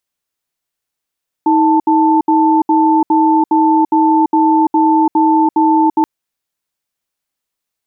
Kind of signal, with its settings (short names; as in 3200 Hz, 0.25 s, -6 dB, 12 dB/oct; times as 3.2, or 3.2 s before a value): cadence 317 Hz, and 884 Hz, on 0.34 s, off 0.07 s, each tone -10.5 dBFS 4.58 s